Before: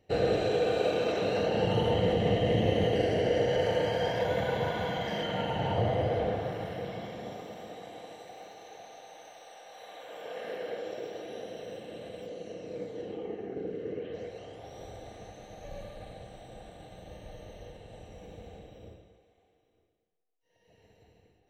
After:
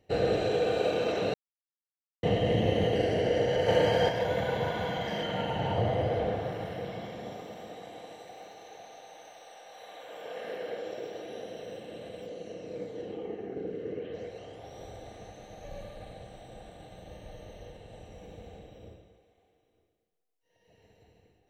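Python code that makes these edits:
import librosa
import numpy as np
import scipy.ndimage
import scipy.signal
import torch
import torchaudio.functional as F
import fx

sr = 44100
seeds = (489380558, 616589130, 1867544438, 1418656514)

y = fx.edit(x, sr, fx.silence(start_s=1.34, length_s=0.89),
    fx.clip_gain(start_s=3.68, length_s=0.41, db=4.5), tone=tone)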